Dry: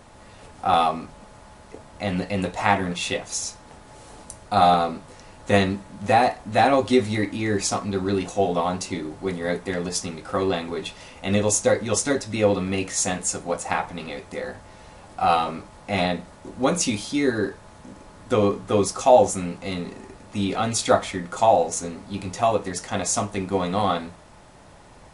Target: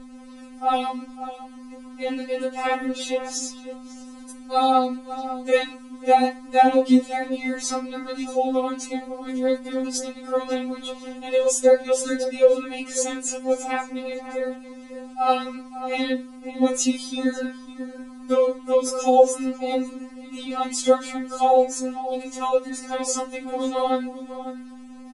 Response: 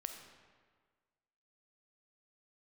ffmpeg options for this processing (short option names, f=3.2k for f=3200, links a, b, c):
-filter_complex "[0:a]aeval=exprs='val(0)+0.0224*(sin(2*PI*50*n/s)+sin(2*PI*2*50*n/s)/2+sin(2*PI*3*50*n/s)/3+sin(2*PI*4*50*n/s)/4+sin(2*PI*5*50*n/s)/5)':c=same,asplit=2[a][b];[b]adelay=548.1,volume=-12dB,highshelf=f=4k:g=-12.3[c];[a][c]amix=inputs=2:normalize=0,afftfilt=real='re*3.46*eq(mod(b,12),0)':imag='im*3.46*eq(mod(b,12),0)':win_size=2048:overlap=0.75"